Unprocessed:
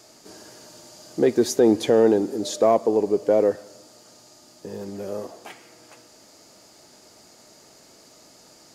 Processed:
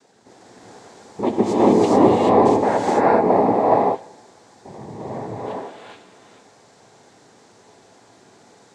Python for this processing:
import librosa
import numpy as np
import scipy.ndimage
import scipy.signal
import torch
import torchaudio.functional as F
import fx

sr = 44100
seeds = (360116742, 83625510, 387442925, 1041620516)

y = scipy.signal.sosfilt(scipy.signal.butter(2, 4900.0, 'lowpass', fs=sr, output='sos'), x)
y = fx.high_shelf(y, sr, hz=3400.0, db=-8.0)
y = fx.noise_vocoder(y, sr, seeds[0], bands=6)
y = fx.rev_gated(y, sr, seeds[1], gate_ms=460, shape='rising', drr_db=-6.0)
y = y * 10.0 ** (-2.0 / 20.0)